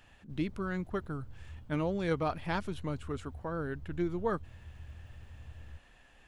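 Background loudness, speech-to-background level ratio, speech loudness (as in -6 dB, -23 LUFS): -51.5 LUFS, 15.5 dB, -36.0 LUFS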